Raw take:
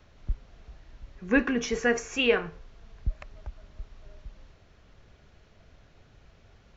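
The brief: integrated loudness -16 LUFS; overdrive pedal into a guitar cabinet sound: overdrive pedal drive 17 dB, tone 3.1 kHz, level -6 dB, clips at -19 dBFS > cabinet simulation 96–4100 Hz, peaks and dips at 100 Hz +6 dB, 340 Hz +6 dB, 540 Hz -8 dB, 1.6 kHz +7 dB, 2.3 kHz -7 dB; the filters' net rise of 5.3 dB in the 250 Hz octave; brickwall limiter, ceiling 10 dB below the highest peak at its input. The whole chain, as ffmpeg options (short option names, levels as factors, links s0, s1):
-filter_complex "[0:a]equalizer=f=250:t=o:g=4.5,alimiter=limit=0.112:level=0:latency=1,asplit=2[s0][s1];[s1]highpass=f=720:p=1,volume=7.08,asoftclip=type=tanh:threshold=0.112[s2];[s0][s2]amix=inputs=2:normalize=0,lowpass=f=3100:p=1,volume=0.501,highpass=96,equalizer=f=100:t=q:w=4:g=6,equalizer=f=340:t=q:w=4:g=6,equalizer=f=540:t=q:w=4:g=-8,equalizer=f=1600:t=q:w=4:g=7,equalizer=f=2300:t=q:w=4:g=-7,lowpass=f=4100:w=0.5412,lowpass=f=4100:w=1.3066,volume=3.98"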